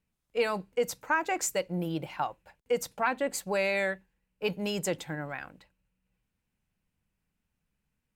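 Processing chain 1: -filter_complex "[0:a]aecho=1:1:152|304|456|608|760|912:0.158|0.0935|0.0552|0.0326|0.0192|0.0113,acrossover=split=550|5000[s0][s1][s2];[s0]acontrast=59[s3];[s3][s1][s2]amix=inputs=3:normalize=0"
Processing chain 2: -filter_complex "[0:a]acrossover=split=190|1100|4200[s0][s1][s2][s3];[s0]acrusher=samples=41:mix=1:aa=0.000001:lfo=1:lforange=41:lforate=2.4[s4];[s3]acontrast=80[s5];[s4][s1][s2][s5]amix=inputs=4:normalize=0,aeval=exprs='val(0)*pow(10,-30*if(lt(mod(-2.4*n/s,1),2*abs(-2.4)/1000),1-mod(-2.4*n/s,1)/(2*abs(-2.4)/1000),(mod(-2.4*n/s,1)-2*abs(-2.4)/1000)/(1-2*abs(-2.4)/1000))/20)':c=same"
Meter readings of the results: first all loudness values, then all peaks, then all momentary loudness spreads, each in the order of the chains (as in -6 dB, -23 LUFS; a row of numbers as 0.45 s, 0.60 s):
-28.5 LUFS, -38.5 LUFS; -12.0 dBFS, -15.5 dBFS; 9 LU, 11 LU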